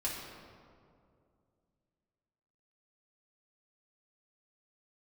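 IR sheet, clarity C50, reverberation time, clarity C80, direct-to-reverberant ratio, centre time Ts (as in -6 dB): 1.5 dB, 2.4 s, 3.0 dB, -5.5 dB, 89 ms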